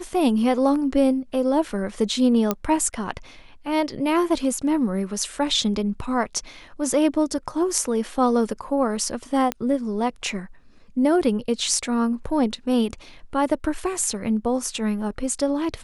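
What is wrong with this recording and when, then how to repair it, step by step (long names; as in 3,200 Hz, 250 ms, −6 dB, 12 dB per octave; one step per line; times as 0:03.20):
0:02.51: click −7 dBFS
0:09.52: click −9 dBFS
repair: click removal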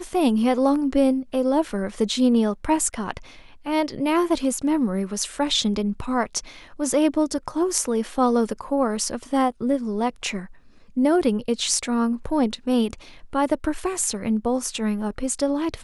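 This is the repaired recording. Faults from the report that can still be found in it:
none of them is left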